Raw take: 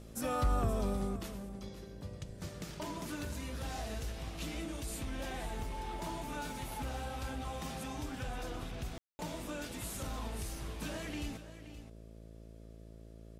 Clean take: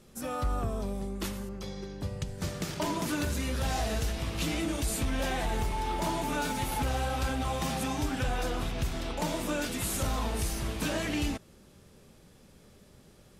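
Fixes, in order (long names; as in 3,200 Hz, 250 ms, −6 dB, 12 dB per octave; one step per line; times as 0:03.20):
hum removal 55.4 Hz, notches 12
ambience match 0:08.98–0:09.19
echo removal 524 ms −13 dB
level correction +10 dB, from 0:01.16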